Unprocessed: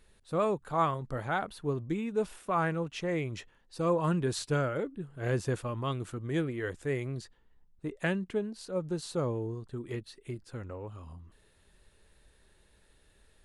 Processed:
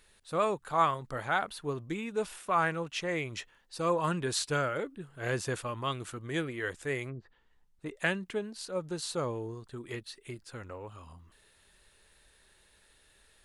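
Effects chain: 7.09–7.86 s: low-pass that closes with the level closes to 410 Hz, closed at -33 dBFS; tilt shelf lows -5.5 dB, about 640 Hz

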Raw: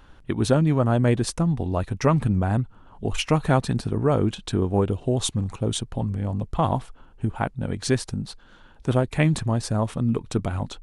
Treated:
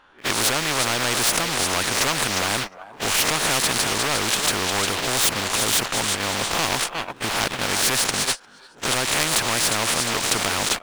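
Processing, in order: reverse spectral sustain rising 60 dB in 0.30 s; in parallel at -9.5 dB: bit crusher 6-bit; on the sum: overdrive pedal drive 22 dB, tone 2 kHz, clips at -2 dBFS; bass shelf 350 Hz -8.5 dB; on a send: thinning echo 355 ms, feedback 36%, high-pass 580 Hz, level -11.5 dB; on the sum: gate -25 dBFS, range -29 dB; spectrum-flattening compressor 4:1

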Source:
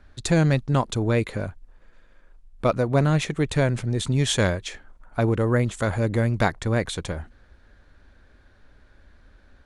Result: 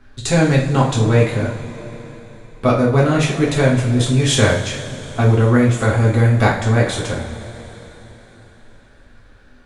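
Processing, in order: two-slope reverb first 0.42 s, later 4.1 s, from -18 dB, DRR -5 dB; trim +1.5 dB

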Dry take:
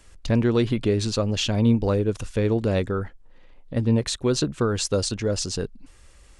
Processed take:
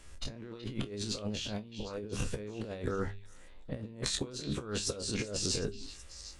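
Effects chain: every event in the spectrogram widened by 60 ms; de-hum 99.89 Hz, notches 4; compressor with a negative ratio -25 dBFS, ratio -0.5; feedback comb 69 Hz, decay 0.15 s, harmonics all, mix 60%; repeats whose band climbs or falls 376 ms, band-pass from 3.1 kHz, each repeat 0.7 oct, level -10 dB; trim -8 dB

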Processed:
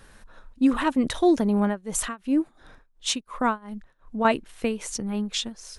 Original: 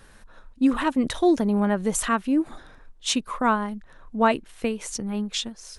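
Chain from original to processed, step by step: 1.64–4.25 s: tremolo 2.8 Hz, depth 94%

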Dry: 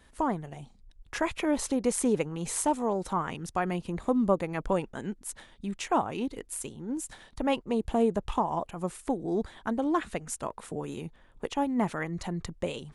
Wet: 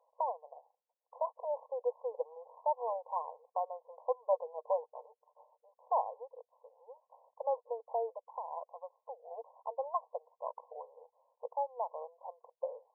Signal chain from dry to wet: 4.32–5.69 s: comb 6.7 ms, depth 49%; 8.14–9.31 s: compression 6:1, threshold -33 dBFS, peak gain reduction 11 dB; brick-wall FIR band-pass 460–1100 Hz; trim -3.5 dB

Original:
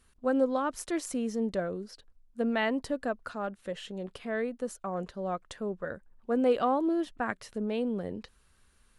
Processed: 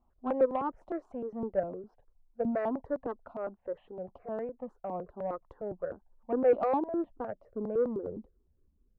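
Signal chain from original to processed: low-pass sweep 800 Hz -> 290 Hz, 6.77–8.92 s; dynamic bell 760 Hz, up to -6 dB, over -43 dBFS, Q 5.1; Chebyshev shaper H 7 -29 dB, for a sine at -11.5 dBFS; stepped phaser 9.8 Hz 450–1500 Hz

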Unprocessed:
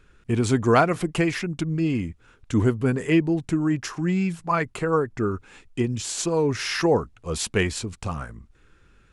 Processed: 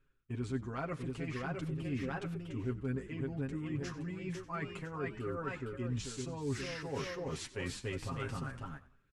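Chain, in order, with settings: ever faster or slower copies 714 ms, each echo +1 st, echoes 2, each echo -6 dB; reverse; compression 16:1, threshold -33 dBFS, peak gain reduction 21 dB; reverse; treble shelf 5.9 kHz -11.5 dB; gate -43 dBFS, range -16 dB; peaking EQ 700 Hz -4 dB 0.84 oct; comb 7.4 ms, depth 88%; on a send: frequency-shifting echo 92 ms, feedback 33%, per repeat -65 Hz, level -16.5 dB; on the sum: trim -3.5 dB

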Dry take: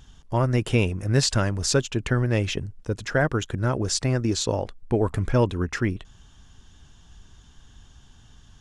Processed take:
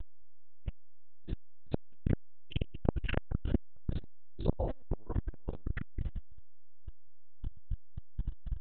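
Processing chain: spectral sustain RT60 0.50 s; 2.52–3.20 s: resonant low-pass 2.9 kHz, resonance Q 12; vibrato 0.53 Hz 23 cents; LPC vocoder at 8 kHz pitch kept; tilt EQ -4 dB/octave; band-stop 410 Hz, Q 12; compression 8:1, threshold -22 dBFS, peak gain reduction 23 dB; 0.63 s: tape stop 0.53 s; 4.64–5.67 s: bass shelf 120 Hz -7.5 dB; transformer saturation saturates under 330 Hz; trim +3 dB

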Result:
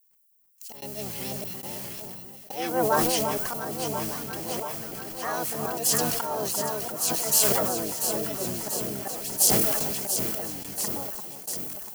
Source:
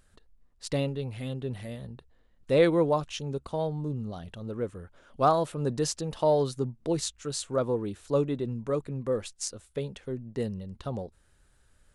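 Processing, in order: bass shelf 89 Hz +8.5 dB; word length cut 8-bit, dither none; harmony voices -7 st -7 dB, +7 st -1 dB; slow attack 340 ms; added noise violet -61 dBFS; RIAA curve recording; band-stop 3.7 kHz, Q 8.5; on a send: echo whose repeats swap between lows and highs 344 ms, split 1.3 kHz, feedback 84%, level -6 dB; on the sum: gate with hold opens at -24 dBFS; decay stretcher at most 24 dB/s; trim -1 dB

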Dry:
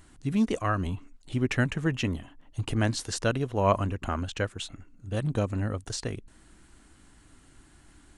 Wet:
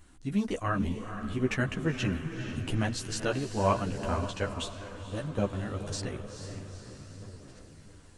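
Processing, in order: echo that smears into a reverb 463 ms, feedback 57%, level -8.5 dB; chorus voices 4, 1.5 Hz, delay 13 ms, depth 3 ms; 4.31–5.53 s: three bands expanded up and down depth 40%

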